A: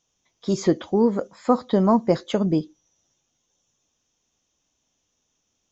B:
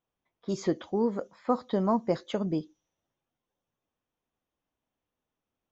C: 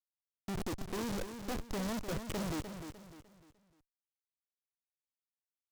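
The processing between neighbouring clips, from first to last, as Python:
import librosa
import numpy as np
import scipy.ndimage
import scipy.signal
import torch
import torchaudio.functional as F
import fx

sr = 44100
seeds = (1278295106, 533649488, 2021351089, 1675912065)

y1 = fx.high_shelf(x, sr, hz=5200.0, db=-5.0)
y1 = fx.env_lowpass(y1, sr, base_hz=1900.0, full_db=-19.5)
y1 = fx.low_shelf(y1, sr, hz=440.0, db=-3.5)
y1 = y1 * 10.0 ** (-6.0 / 20.0)
y2 = fx.schmitt(y1, sr, flips_db=-35.0)
y2 = fx.echo_feedback(y2, sr, ms=301, feedback_pct=36, wet_db=-8.5)
y2 = fx.noise_mod_delay(y2, sr, seeds[0], noise_hz=4200.0, depth_ms=0.059)
y2 = y2 * 10.0 ** (-3.0 / 20.0)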